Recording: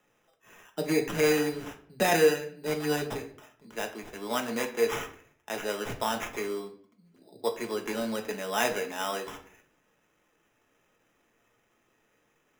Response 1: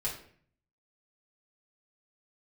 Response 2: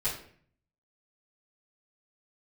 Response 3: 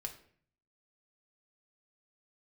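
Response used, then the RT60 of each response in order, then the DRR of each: 3; 0.55 s, 0.55 s, 0.55 s; -6.5 dB, -13.0 dB, 3.0 dB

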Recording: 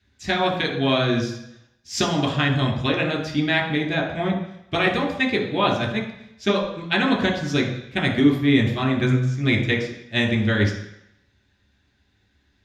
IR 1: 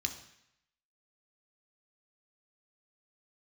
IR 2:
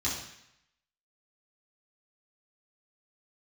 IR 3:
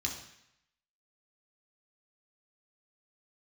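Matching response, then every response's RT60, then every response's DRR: 3; 0.75 s, 0.75 s, 0.75 s; 4.0 dB, -9.0 dB, -1.0 dB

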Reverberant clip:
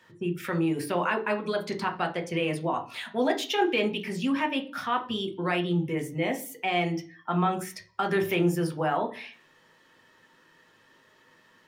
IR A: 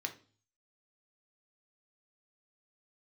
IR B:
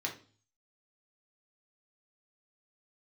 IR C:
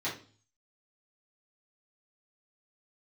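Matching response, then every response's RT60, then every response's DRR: A; 0.40 s, 0.40 s, 0.40 s; 4.5 dB, -1.0 dB, -10.0 dB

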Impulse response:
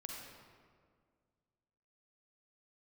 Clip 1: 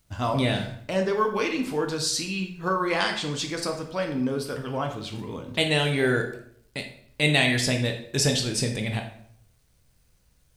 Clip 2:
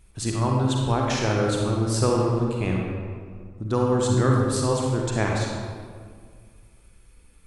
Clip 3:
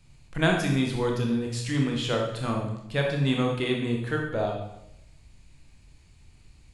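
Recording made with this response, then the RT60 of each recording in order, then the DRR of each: 2; 0.65 s, 1.9 s, 0.85 s; 3.5 dB, -1.0 dB, 0.0 dB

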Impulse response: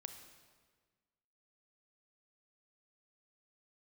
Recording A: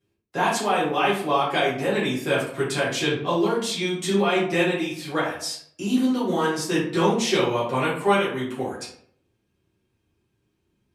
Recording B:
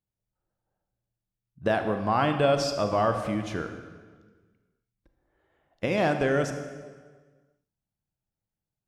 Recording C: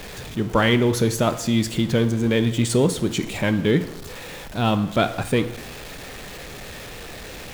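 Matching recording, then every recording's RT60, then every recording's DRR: B; 0.65 s, 1.5 s, 0.85 s; -9.5 dB, 6.5 dB, 11.0 dB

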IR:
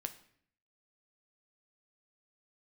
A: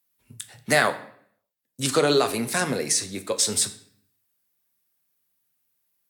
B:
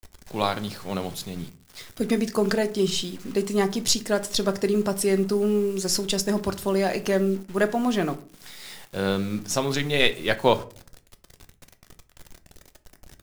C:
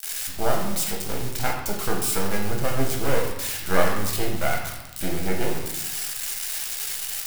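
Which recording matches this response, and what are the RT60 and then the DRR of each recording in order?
A; 0.60 s, 0.45 s, 1.0 s; 7.5 dB, 9.5 dB, -1.0 dB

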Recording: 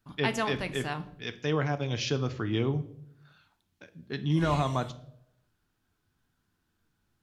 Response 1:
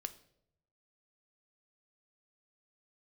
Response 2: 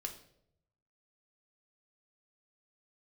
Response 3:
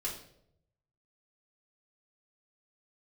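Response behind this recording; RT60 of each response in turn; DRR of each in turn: 1; 0.75 s, 0.75 s, 0.70 s; 9.0 dB, 2.5 dB, -6.0 dB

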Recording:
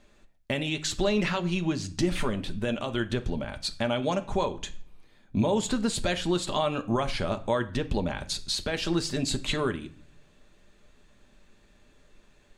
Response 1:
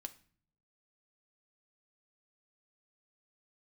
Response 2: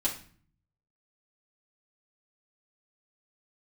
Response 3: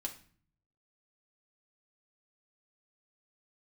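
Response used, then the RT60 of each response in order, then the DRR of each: 1; 0.45 s, 0.45 s, 0.45 s; 8.0 dB, -6.5 dB, 1.0 dB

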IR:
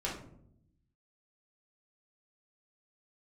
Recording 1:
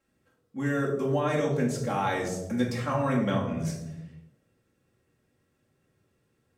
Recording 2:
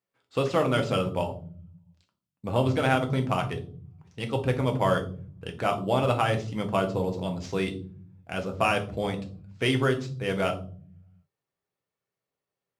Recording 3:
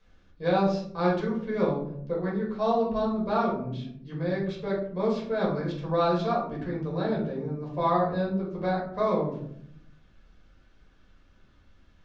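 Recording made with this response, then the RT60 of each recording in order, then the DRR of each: 3; 1.0 s, 0.45 s, 0.70 s; -4.0 dB, 3.0 dB, -5.0 dB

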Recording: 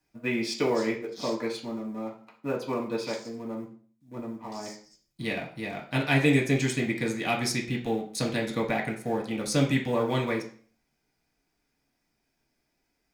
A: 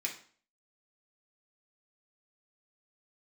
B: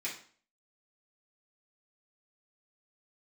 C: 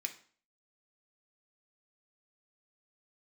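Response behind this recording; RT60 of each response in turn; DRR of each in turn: A; 0.45 s, 0.45 s, 0.45 s; -1.5 dB, -7.5 dB, 4.0 dB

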